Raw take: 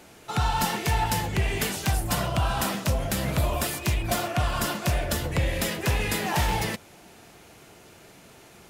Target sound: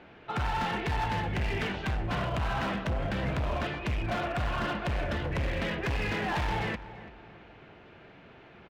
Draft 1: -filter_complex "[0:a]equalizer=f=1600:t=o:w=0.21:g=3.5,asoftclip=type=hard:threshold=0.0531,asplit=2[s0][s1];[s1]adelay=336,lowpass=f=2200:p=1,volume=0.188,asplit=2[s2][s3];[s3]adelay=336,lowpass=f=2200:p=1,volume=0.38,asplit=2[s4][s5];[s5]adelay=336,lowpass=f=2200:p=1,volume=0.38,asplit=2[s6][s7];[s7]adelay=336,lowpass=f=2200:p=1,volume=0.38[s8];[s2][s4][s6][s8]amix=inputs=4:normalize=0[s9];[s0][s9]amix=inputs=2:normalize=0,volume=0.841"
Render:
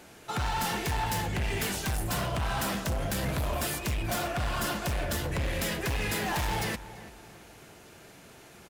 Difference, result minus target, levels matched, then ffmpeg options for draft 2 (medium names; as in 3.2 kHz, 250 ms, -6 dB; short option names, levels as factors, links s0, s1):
4 kHz band +3.0 dB
-filter_complex "[0:a]lowpass=f=3100:w=0.5412,lowpass=f=3100:w=1.3066,equalizer=f=1600:t=o:w=0.21:g=3.5,asoftclip=type=hard:threshold=0.0531,asplit=2[s0][s1];[s1]adelay=336,lowpass=f=2200:p=1,volume=0.188,asplit=2[s2][s3];[s3]adelay=336,lowpass=f=2200:p=1,volume=0.38,asplit=2[s4][s5];[s5]adelay=336,lowpass=f=2200:p=1,volume=0.38,asplit=2[s6][s7];[s7]adelay=336,lowpass=f=2200:p=1,volume=0.38[s8];[s2][s4][s6][s8]amix=inputs=4:normalize=0[s9];[s0][s9]amix=inputs=2:normalize=0,volume=0.841"